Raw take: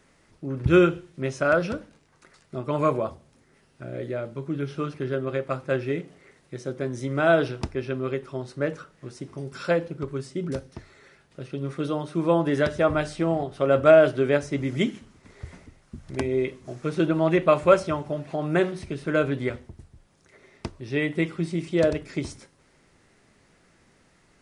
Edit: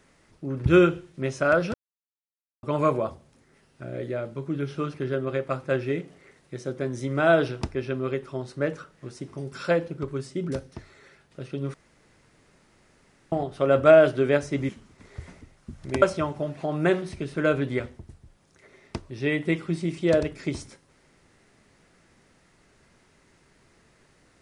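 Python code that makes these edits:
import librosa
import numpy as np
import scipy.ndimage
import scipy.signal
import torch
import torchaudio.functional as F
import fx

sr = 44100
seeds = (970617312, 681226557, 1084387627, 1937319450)

y = fx.edit(x, sr, fx.silence(start_s=1.74, length_s=0.89),
    fx.room_tone_fill(start_s=11.74, length_s=1.58),
    fx.cut(start_s=14.69, length_s=0.25),
    fx.cut(start_s=16.27, length_s=1.45), tone=tone)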